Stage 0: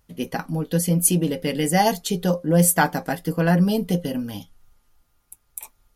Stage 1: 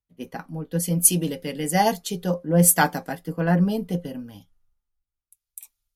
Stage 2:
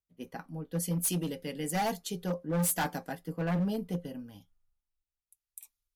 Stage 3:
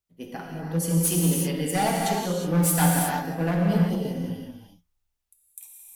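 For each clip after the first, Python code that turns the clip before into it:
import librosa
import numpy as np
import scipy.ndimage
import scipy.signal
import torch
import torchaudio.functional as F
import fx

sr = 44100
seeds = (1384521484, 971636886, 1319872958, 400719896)

y1 = fx.band_widen(x, sr, depth_pct=70)
y1 = y1 * librosa.db_to_amplitude(-3.5)
y2 = np.clip(10.0 ** (18.5 / 20.0) * y1, -1.0, 1.0) / 10.0 ** (18.5 / 20.0)
y2 = y2 * librosa.db_to_amplitude(-7.5)
y3 = fx.rev_gated(y2, sr, seeds[0], gate_ms=390, shape='flat', drr_db=-2.0)
y3 = y3 * librosa.db_to_amplitude(4.0)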